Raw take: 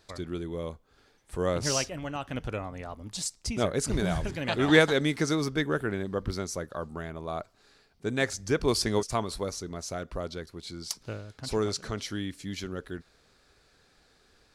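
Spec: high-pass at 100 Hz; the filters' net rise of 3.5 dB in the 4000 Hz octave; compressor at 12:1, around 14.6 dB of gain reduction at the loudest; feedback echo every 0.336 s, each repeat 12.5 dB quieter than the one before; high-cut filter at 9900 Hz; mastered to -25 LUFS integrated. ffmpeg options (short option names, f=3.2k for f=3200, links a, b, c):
-af "highpass=100,lowpass=9.9k,equalizer=f=4k:t=o:g=4.5,acompressor=threshold=-29dB:ratio=12,aecho=1:1:336|672|1008:0.237|0.0569|0.0137,volume=10.5dB"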